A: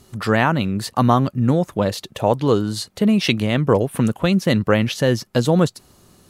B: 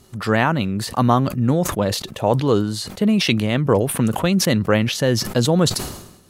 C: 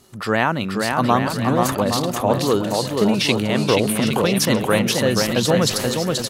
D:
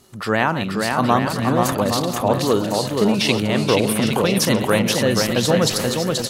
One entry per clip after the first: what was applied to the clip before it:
decay stretcher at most 65 dB/s; trim -1 dB
bass shelf 140 Hz -10.5 dB; on a send: bouncing-ball echo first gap 480 ms, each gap 0.7×, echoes 5
chunks repeated in reverse 127 ms, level -12.5 dB

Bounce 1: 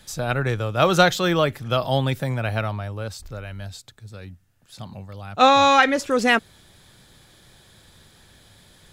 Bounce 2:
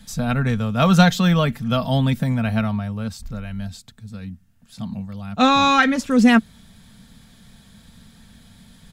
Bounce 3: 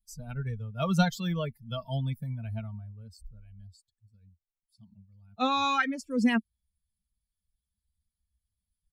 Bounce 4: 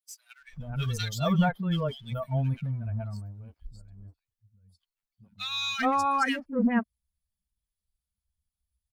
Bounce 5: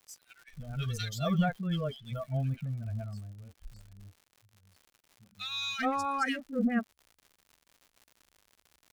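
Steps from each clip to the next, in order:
resonant low shelf 280 Hz +6.5 dB, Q 3; comb 4.4 ms, depth 40%; trim -1 dB
expander on every frequency bin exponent 2; trim -8.5 dB
waveshaping leveller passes 1; three bands offset in time highs, lows, mids 400/430 ms, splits 290/1800 Hz
Butterworth band-stop 960 Hz, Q 3.5; crackle 140 per s -42 dBFS; trim -4 dB

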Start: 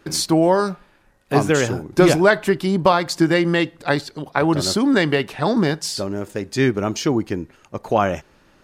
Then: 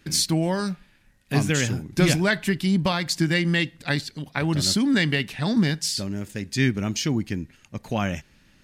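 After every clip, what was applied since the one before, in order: high-order bell 670 Hz -11.5 dB 2.4 oct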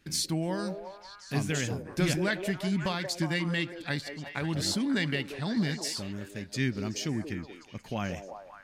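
repeats whose band climbs or falls 180 ms, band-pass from 460 Hz, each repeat 0.7 oct, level -3 dB; trim -8 dB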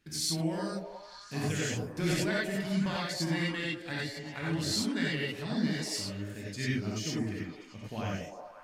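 gated-style reverb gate 120 ms rising, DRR -4.5 dB; trim -7.5 dB

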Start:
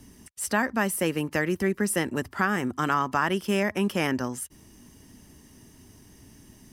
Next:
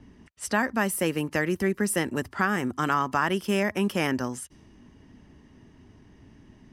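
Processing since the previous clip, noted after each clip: level-controlled noise filter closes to 2.3 kHz, open at -25.5 dBFS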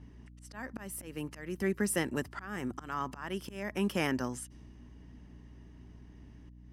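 slow attack 351 ms; hum 60 Hz, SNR 15 dB; trim -5 dB

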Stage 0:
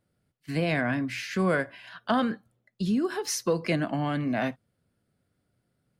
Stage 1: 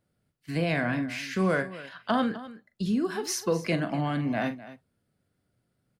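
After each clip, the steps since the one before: multi-tap echo 42/254 ms -11.5/-16 dB; trim -1 dB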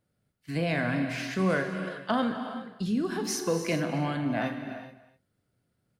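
gated-style reverb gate 450 ms flat, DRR 6.5 dB; trim -1.5 dB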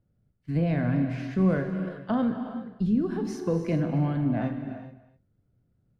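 tilt EQ -4 dB/octave; trim -4.5 dB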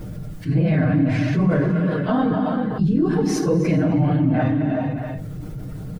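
phase randomisation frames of 50 ms; comb 6.5 ms, depth 54%; level flattener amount 70%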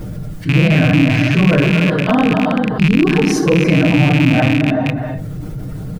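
rattle on loud lows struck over -21 dBFS, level -14 dBFS; trim +6 dB

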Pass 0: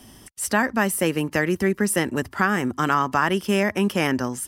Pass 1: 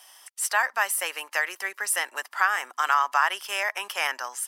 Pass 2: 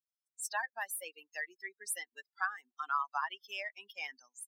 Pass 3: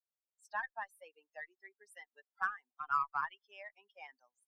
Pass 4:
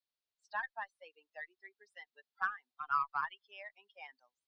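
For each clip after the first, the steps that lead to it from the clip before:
high-pass 770 Hz 24 dB/octave
expander on every frequency bin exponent 3; trim -7.5 dB
auto-wah 550–1300 Hz, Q 2.2, up, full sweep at -32.5 dBFS; Chebyshev shaper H 6 -36 dB, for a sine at -22 dBFS; trim +1.5 dB
four-pole ladder low-pass 4.9 kHz, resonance 50%; trim +9 dB

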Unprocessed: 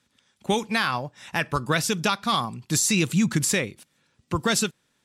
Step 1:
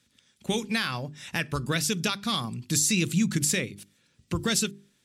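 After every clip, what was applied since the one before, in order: peaking EQ 900 Hz -10.5 dB 1.6 oct; hum notches 50/100/150/200/250/300/350/400 Hz; in parallel at +1.5 dB: compression, threshold -32 dBFS, peak gain reduction 13 dB; on the sum: trim -3.5 dB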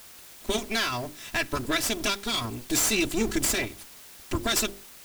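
comb filter that takes the minimum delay 3 ms; in parallel at -12 dB: word length cut 6-bit, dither triangular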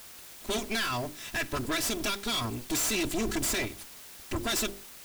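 hard clipper -26.5 dBFS, distortion -8 dB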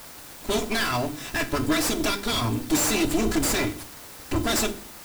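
FDN reverb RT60 0.4 s, low-frequency decay 1.6×, high-frequency decay 0.9×, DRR 7.5 dB; in parallel at -6 dB: sample-and-hold 13×; on the sum: trim +3 dB

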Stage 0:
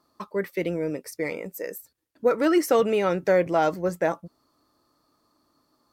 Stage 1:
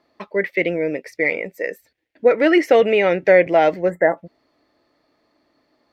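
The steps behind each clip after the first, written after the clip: FFT filter 140 Hz 0 dB, 680 Hz +9 dB, 1.2 kHz -4 dB, 2 kHz +15 dB, 9.5 kHz -18 dB; time-frequency box 3.90–4.17 s, 2.1–7 kHz -27 dB; treble shelf 4.4 kHz +6 dB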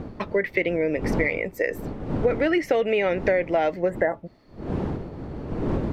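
wind noise 310 Hz -32 dBFS; compression 5:1, threshold -24 dBFS, peak gain reduction 14.5 dB; trim +4 dB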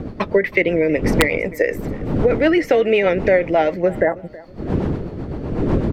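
rotary cabinet horn 8 Hz; feedback delay 322 ms, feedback 32%, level -21 dB; integer overflow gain 10.5 dB; trim +8.5 dB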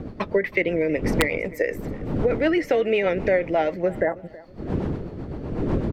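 speakerphone echo 240 ms, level -29 dB; trim -5.5 dB

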